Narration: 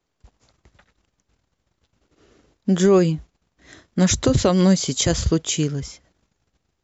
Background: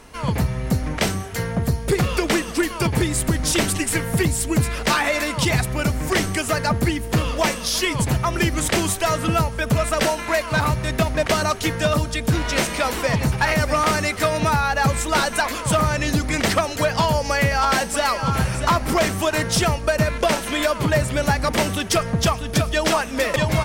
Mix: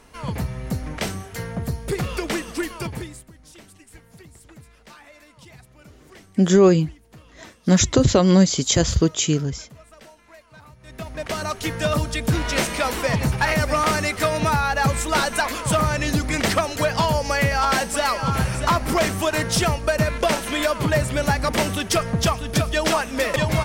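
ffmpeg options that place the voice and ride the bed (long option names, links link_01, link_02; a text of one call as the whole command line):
ffmpeg -i stem1.wav -i stem2.wav -filter_complex "[0:a]adelay=3700,volume=1.5dB[link_01];[1:a]volume=20.5dB,afade=type=out:start_time=2.67:duration=0.58:silence=0.0841395,afade=type=in:start_time=10.79:duration=1.26:silence=0.0501187[link_02];[link_01][link_02]amix=inputs=2:normalize=0" out.wav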